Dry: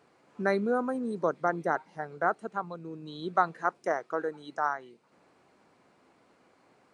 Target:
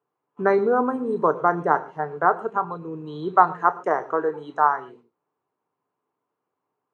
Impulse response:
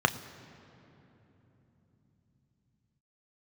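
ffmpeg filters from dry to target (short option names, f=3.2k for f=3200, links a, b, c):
-filter_complex "[0:a]agate=range=-26dB:threshold=-57dB:ratio=16:detection=peak,equalizer=f=100:t=o:w=0.67:g=4,equalizer=f=400:t=o:w=0.67:g=10,equalizer=f=1k:t=o:w=0.67:g=9[a];[1:a]atrim=start_sample=2205,atrim=end_sample=6615[b];[a][b]afir=irnorm=-1:irlink=0,volume=-10.5dB"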